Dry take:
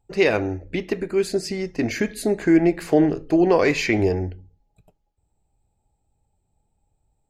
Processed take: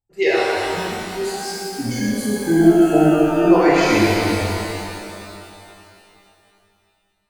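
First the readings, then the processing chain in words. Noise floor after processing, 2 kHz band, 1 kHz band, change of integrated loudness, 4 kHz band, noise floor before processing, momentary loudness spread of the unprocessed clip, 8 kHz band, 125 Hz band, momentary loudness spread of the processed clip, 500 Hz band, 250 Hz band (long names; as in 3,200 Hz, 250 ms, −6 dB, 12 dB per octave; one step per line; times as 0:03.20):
−66 dBFS, +4.0 dB, +9.0 dB, +3.5 dB, +7.0 dB, −73 dBFS, 10 LU, +7.0 dB, +4.0 dB, 15 LU, +2.5 dB, +4.5 dB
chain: noise reduction from a noise print of the clip's start 17 dB
reverb with rising layers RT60 2.8 s, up +12 semitones, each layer −8 dB, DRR −8.5 dB
level −3.5 dB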